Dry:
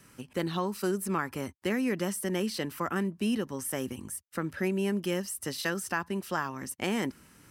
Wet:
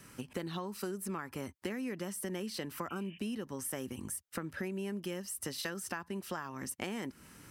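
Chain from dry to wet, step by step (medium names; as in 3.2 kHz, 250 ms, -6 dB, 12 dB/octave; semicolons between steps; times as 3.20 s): spectral replace 2.92–3.15 s, 1.6–3.6 kHz after; compression 6:1, threshold -38 dBFS, peak gain reduction 13 dB; trim +2 dB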